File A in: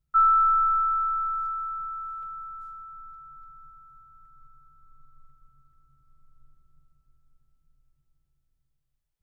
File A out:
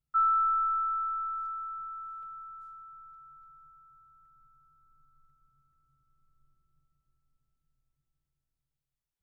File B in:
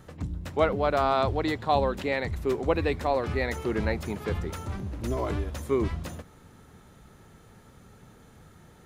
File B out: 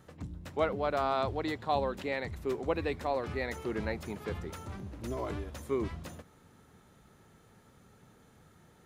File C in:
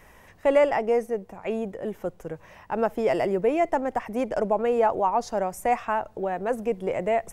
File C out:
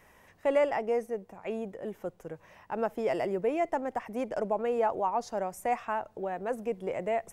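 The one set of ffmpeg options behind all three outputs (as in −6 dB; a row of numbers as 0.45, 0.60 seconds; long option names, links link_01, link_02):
-af "lowshelf=frequency=62:gain=-9,volume=-6dB"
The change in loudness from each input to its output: −6.0, −6.5, −6.0 LU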